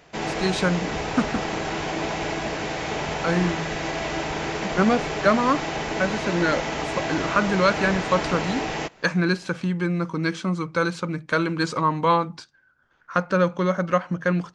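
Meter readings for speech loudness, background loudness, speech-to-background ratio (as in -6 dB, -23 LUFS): -24.5 LUFS, -28.0 LUFS, 3.5 dB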